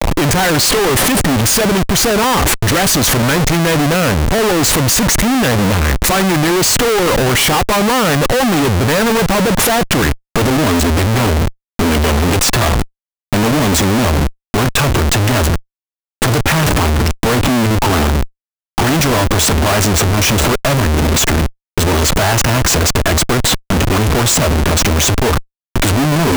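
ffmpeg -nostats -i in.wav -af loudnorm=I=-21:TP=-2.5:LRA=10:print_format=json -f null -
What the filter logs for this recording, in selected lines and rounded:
"input_i" : "-13.0",
"input_tp" : "-4.4",
"input_lra" : "2.3",
"input_thresh" : "-23.1",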